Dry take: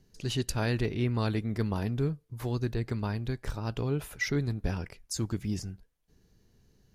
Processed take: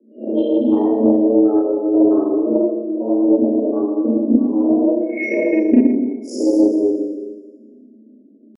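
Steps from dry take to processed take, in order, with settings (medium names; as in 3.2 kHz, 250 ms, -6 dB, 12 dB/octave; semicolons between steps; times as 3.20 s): reverse spectral sustain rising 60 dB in 0.32 s; transient shaper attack +10 dB, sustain -7 dB; high-pass 42 Hz 6 dB/octave; tilt EQ -3 dB/octave; spectral gate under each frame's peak -20 dB strong; frequency shift +200 Hz; tempo 0.81×; Schroeder reverb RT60 1.4 s, combs from 28 ms, DRR -8 dB; loudspeaker Doppler distortion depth 0.17 ms; trim -4 dB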